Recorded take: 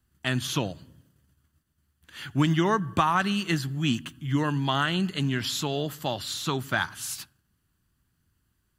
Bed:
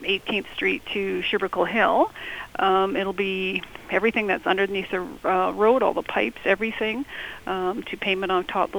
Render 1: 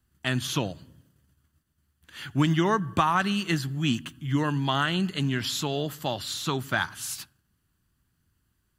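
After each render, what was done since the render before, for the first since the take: no audible change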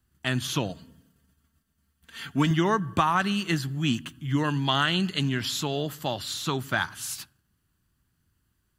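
0.69–2.51 s: comb 4.4 ms, depth 64%; 4.43–5.29 s: dynamic bell 3.9 kHz, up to +5 dB, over -43 dBFS, Q 0.72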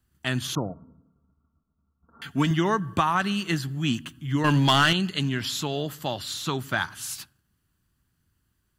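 0.55–2.22 s: Chebyshev low-pass 1.4 kHz, order 8; 4.44–4.93 s: waveshaping leveller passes 2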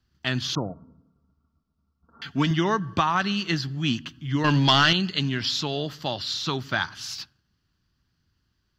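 resonant high shelf 6.9 kHz -11.5 dB, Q 3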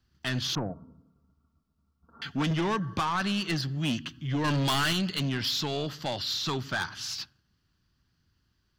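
saturation -23.5 dBFS, distortion -8 dB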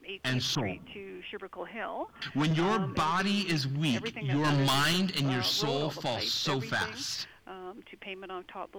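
add bed -17.5 dB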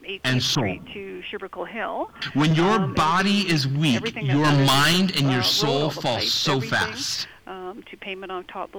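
trim +8.5 dB

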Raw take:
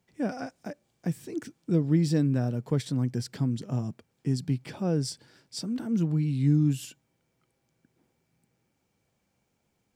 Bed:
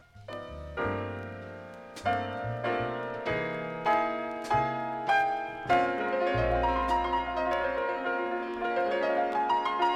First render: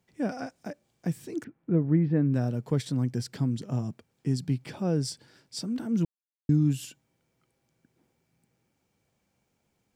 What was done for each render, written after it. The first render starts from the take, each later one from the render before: 1.44–2.34 s: low-pass 2.1 kHz 24 dB/octave; 6.05–6.49 s: mute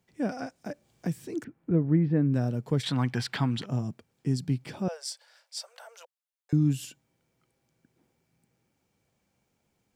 0.70–1.71 s: three bands compressed up and down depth 40%; 2.83–3.66 s: high-order bell 1.7 kHz +14.5 dB 2.8 oct; 4.88–6.53 s: steep high-pass 530 Hz 72 dB/octave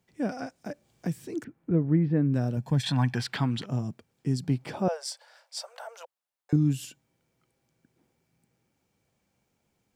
2.57–3.15 s: comb 1.2 ms; 4.43–6.56 s: peaking EQ 760 Hz +8.5 dB 2 oct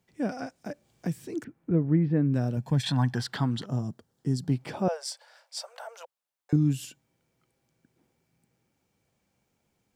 2.92–4.52 s: peaking EQ 2.4 kHz -13.5 dB 0.36 oct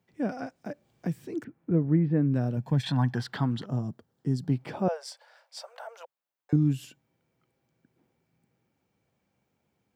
high-pass 66 Hz; peaking EQ 8.6 kHz -8.5 dB 2 oct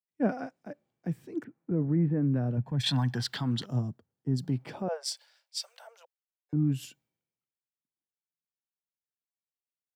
peak limiter -21.5 dBFS, peak gain reduction 8.5 dB; three bands expanded up and down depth 100%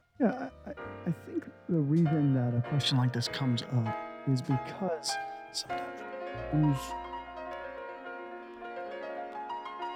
add bed -11.5 dB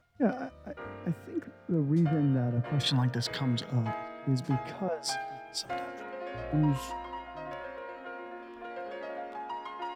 echo from a far wall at 140 m, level -27 dB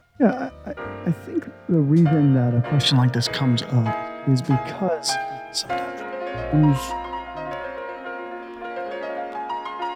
trim +10 dB

